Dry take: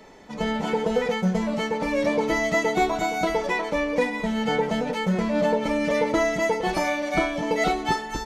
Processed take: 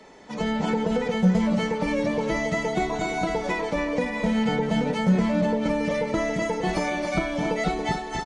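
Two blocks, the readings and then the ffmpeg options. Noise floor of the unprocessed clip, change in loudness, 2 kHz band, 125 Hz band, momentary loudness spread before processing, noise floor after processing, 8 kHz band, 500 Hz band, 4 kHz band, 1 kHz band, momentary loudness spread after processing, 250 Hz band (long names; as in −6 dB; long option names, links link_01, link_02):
−35 dBFS, −0.5 dB, −3.0 dB, +4.5 dB, 3 LU, −34 dBFS, −2.5 dB, −2.5 dB, −2.0 dB, −3.0 dB, 5 LU, +2.0 dB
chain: -filter_complex "[0:a]dynaudnorm=framelen=130:gausssize=7:maxgain=11dB,aecho=1:1:278|556|834:0.355|0.0816|0.0188,acrossover=split=200[link_01][link_02];[link_02]acompressor=threshold=-28dB:ratio=3[link_03];[link_01][link_03]amix=inputs=2:normalize=0,lowshelf=frequency=85:gain=-7.5" -ar 44100 -c:a libmp3lame -b:a 48k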